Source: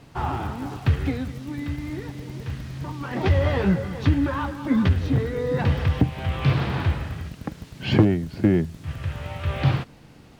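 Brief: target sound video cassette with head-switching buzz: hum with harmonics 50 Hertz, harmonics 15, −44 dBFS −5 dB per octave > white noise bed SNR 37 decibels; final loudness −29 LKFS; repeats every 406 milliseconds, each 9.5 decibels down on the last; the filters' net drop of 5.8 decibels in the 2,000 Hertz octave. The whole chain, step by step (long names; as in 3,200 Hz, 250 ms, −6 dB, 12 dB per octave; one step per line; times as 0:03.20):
parametric band 2,000 Hz −7.5 dB
repeating echo 406 ms, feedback 33%, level −9.5 dB
hum with harmonics 50 Hz, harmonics 15, −44 dBFS −5 dB per octave
white noise bed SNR 37 dB
level −4.5 dB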